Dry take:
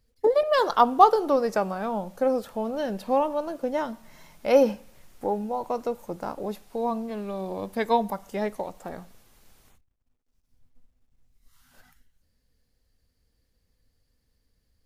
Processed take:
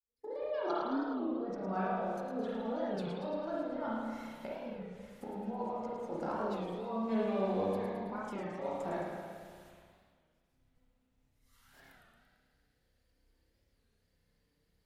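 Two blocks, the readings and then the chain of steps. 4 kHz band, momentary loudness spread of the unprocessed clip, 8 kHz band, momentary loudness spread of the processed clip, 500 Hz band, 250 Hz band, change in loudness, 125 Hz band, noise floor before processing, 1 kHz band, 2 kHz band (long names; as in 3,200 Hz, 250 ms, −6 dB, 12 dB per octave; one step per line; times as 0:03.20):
−14.0 dB, 14 LU, can't be measured, 11 LU, −12.0 dB, −6.0 dB, −12.0 dB, −3.0 dB, −73 dBFS, −14.5 dB, −10.0 dB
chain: fade in at the beginning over 1.21 s
notch filter 1,100 Hz, Q 22
reverb reduction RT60 0.56 s
treble cut that deepens with the level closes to 1,500 Hz, closed at −21.5 dBFS
high-pass filter 78 Hz 6 dB per octave
compressor whose output falls as the input rises −34 dBFS, ratio −1
flanger 0.52 Hz, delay 1.4 ms, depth 6 ms, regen +55%
on a send: delay with a high-pass on its return 108 ms, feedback 58%, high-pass 3,500 Hz, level −6.5 dB
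on the sum: spring reverb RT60 1.9 s, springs 31/59 ms, chirp 25 ms, DRR −7 dB
wow of a warped record 33 1/3 rpm, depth 160 cents
level −7 dB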